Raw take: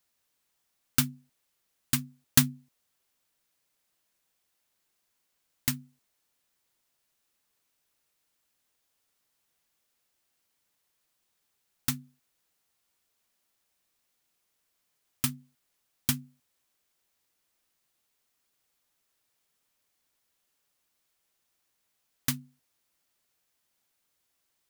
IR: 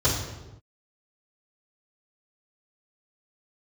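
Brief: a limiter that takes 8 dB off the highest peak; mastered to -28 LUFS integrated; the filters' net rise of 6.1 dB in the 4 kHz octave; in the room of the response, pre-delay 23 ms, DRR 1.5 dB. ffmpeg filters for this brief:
-filter_complex "[0:a]equalizer=f=4000:t=o:g=7.5,alimiter=limit=0.316:level=0:latency=1,asplit=2[s0][s1];[1:a]atrim=start_sample=2205,adelay=23[s2];[s1][s2]afir=irnorm=-1:irlink=0,volume=0.158[s3];[s0][s3]amix=inputs=2:normalize=0,volume=1.33"

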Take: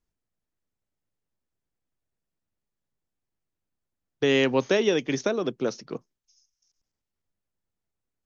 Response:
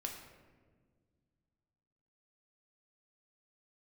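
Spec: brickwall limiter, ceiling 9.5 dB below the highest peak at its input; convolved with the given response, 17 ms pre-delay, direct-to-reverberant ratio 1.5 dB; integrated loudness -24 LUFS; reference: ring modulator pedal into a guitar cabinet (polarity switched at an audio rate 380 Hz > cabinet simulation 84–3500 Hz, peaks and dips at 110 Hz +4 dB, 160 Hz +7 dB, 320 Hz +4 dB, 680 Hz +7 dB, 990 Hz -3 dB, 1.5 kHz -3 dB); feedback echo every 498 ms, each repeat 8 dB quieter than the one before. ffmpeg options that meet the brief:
-filter_complex "[0:a]alimiter=limit=0.112:level=0:latency=1,aecho=1:1:498|996|1494|1992|2490:0.398|0.159|0.0637|0.0255|0.0102,asplit=2[s0][s1];[1:a]atrim=start_sample=2205,adelay=17[s2];[s1][s2]afir=irnorm=-1:irlink=0,volume=0.944[s3];[s0][s3]amix=inputs=2:normalize=0,aeval=exprs='val(0)*sgn(sin(2*PI*380*n/s))':c=same,highpass=84,equalizer=f=110:t=q:w=4:g=4,equalizer=f=160:t=q:w=4:g=7,equalizer=f=320:t=q:w=4:g=4,equalizer=f=680:t=q:w=4:g=7,equalizer=f=990:t=q:w=4:g=-3,equalizer=f=1500:t=q:w=4:g=-3,lowpass=f=3500:w=0.5412,lowpass=f=3500:w=1.3066,volume=1.33"

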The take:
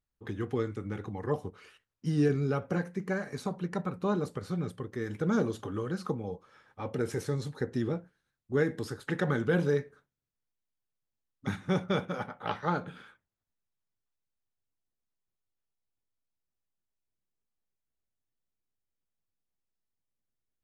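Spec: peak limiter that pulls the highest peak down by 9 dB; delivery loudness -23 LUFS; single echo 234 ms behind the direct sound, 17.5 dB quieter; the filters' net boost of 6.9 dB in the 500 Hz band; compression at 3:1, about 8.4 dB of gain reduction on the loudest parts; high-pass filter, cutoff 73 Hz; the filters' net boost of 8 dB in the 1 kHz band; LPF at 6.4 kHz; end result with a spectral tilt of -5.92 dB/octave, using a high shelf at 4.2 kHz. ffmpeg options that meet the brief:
-af "highpass=73,lowpass=6400,equalizer=f=500:t=o:g=6.5,equalizer=f=1000:t=o:g=8,highshelf=f=4200:g=8,acompressor=threshold=0.0398:ratio=3,alimiter=limit=0.0631:level=0:latency=1,aecho=1:1:234:0.133,volume=4.22"

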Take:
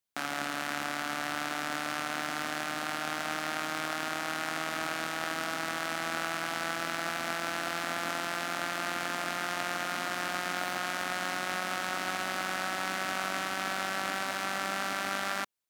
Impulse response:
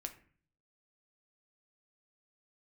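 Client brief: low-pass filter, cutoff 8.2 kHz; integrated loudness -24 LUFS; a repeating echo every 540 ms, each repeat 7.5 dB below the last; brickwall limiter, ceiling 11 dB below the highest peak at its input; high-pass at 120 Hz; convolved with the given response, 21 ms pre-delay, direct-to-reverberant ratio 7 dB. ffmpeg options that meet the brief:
-filter_complex "[0:a]highpass=120,lowpass=8200,alimiter=level_in=1.12:limit=0.0631:level=0:latency=1,volume=0.891,aecho=1:1:540|1080|1620|2160|2700:0.422|0.177|0.0744|0.0312|0.0131,asplit=2[s0][s1];[1:a]atrim=start_sample=2205,adelay=21[s2];[s1][s2]afir=irnorm=-1:irlink=0,volume=0.596[s3];[s0][s3]amix=inputs=2:normalize=0,volume=4.73"

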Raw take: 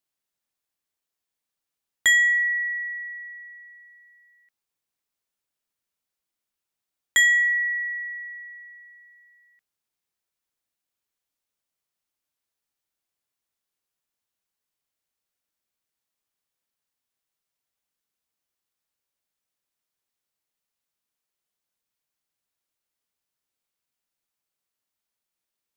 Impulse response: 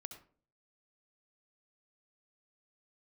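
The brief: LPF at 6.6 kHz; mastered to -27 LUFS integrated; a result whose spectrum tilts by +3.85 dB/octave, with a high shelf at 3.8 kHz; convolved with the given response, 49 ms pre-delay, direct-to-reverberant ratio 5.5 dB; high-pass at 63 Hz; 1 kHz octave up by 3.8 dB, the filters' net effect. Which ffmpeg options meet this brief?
-filter_complex "[0:a]highpass=63,lowpass=6600,equalizer=f=1000:t=o:g=4.5,highshelf=f=3800:g=4,asplit=2[s0][s1];[1:a]atrim=start_sample=2205,adelay=49[s2];[s1][s2]afir=irnorm=-1:irlink=0,volume=0.891[s3];[s0][s3]amix=inputs=2:normalize=0,volume=0.531"

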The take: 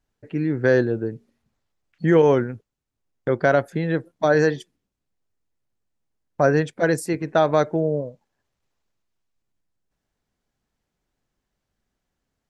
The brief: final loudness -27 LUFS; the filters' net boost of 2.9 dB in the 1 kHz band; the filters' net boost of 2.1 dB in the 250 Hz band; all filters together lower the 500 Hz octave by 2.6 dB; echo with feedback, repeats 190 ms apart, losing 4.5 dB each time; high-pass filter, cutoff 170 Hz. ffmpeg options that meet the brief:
-af "highpass=170,equalizer=f=250:t=o:g=6.5,equalizer=f=500:t=o:g=-6.5,equalizer=f=1000:t=o:g=6.5,aecho=1:1:190|380|570|760|950|1140|1330|1520|1710:0.596|0.357|0.214|0.129|0.0772|0.0463|0.0278|0.0167|0.01,volume=0.473"

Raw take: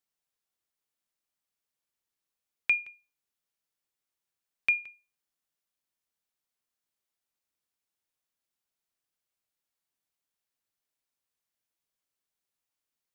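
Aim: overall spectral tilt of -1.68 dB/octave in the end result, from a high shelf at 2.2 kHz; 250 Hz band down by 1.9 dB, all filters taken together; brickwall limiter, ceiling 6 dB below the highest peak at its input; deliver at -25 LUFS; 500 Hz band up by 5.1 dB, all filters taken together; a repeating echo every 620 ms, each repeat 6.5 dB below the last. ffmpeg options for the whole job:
-af "equalizer=f=250:t=o:g=-5.5,equalizer=f=500:t=o:g=8,highshelf=f=2200:g=-7,alimiter=limit=0.0668:level=0:latency=1,aecho=1:1:620|1240|1860|2480|3100|3720:0.473|0.222|0.105|0.0491|0.0231|0.0109,volume=5.31"

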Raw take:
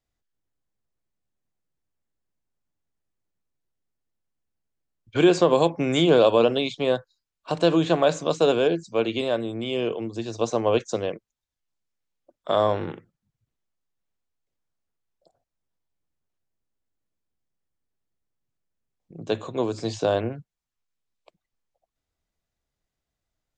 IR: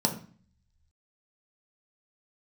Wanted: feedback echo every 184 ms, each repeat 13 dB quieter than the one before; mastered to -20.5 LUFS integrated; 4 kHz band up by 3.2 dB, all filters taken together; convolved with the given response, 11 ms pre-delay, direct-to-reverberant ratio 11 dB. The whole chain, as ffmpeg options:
-filter_complex "[0:a]equalizer=f=4000:t=o:g=4,aecho=1:1:184|368|552:0.224|0.0493|0.0108,asplit=2[s0][s1];[1:a]atrim=start_sample=2205,adelay=11[s2];[s1][s2]afir=irnorm=-1:irlink=0,volume=0.0944[s3];[s0][s3]amix=inputs=2:normalize=0,volume=1.19"

